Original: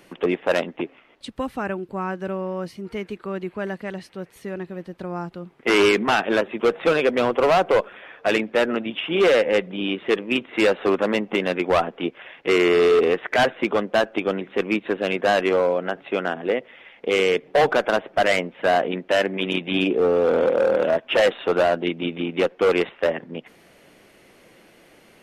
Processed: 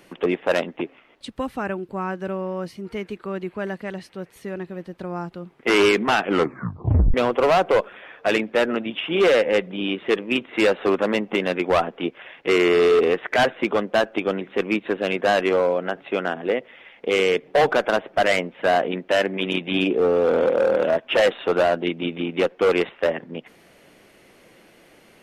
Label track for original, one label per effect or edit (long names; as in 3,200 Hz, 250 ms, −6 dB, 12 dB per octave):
6.210000	6.210000	tape stop 0.93 s